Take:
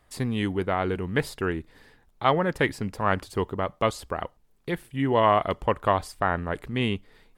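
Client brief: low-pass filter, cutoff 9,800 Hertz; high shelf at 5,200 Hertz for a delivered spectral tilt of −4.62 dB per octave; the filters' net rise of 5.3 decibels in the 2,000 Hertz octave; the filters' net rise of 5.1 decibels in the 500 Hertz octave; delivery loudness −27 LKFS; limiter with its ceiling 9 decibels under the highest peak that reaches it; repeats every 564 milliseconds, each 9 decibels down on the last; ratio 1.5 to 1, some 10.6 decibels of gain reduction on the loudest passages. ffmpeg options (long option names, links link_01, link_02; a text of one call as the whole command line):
ffmpeg -i in.wav -af "lowpass=9800,equalizer=frequency=500:width_type=o:gain=6,equalizer=frequency=2000:width_type=o:gain=5.5,highshelf=frequency=5200:gain=4.5,acompressor=threshold=-43dB:ratio=1.5,alimiter=limit=-21.5dB:level=0:latency=1,aecho=1:1:564|1128|1692|2256:0.355|0.124|0.0435|0.0152,volume=8dB" out.wav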